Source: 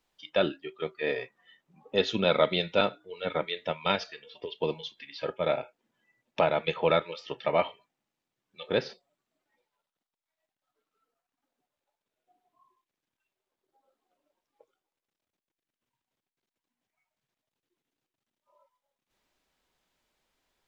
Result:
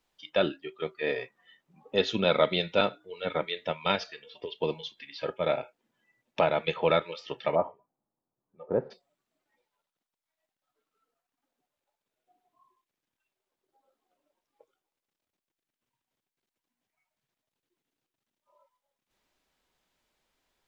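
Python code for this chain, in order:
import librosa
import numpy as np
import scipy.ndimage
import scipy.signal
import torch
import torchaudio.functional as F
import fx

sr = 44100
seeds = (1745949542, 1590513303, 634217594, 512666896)

y = fx.lowpass(x, sr, hz=1100.0, slope=24, at=(7.54, 8.9), fade=0.02)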